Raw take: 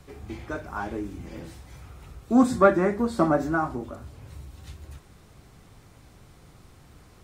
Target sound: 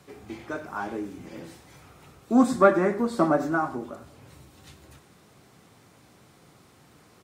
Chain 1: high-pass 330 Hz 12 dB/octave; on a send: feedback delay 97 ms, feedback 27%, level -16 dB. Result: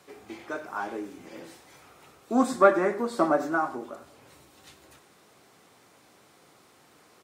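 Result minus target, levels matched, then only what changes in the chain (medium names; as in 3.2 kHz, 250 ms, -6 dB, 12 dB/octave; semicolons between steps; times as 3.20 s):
125 Hz band -7.5 dB
change: high-pass 160 Hz 12 dB/octave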